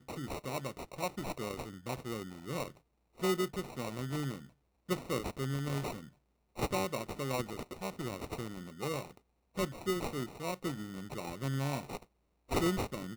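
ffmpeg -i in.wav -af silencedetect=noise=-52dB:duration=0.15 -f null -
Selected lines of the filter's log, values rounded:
silence_start: 2.77
silence_end: 3.18 | silence_duration: 0.41
silence_start: 4.49
silence_end: 4.89 | silence_duration: 0.40
silence_start: 6.09
silence_end: 6.56 | silence_duration: 0.48
silence_start: 9.17
silence_end: 9.55 | silence_duration: 0.38
silence_start: 12.04
silence_end: 12.49 | silence_duration: 0.46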